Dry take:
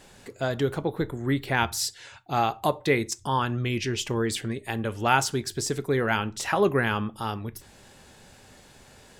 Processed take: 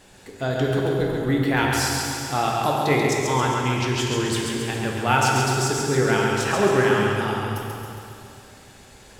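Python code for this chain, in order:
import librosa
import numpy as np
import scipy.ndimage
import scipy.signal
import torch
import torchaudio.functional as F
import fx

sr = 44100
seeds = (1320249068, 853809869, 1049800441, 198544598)

p1 = x + fx.echo_feedback(x, sr, ms=136, feedback_pct=55, wet_db=-4.5, dry=0)
y = fx.rev_plate(p1, sr, seeds[0], rt60_s=2.5, hf_ratio=0.95, predelay_ms=0, drr_db=0.0)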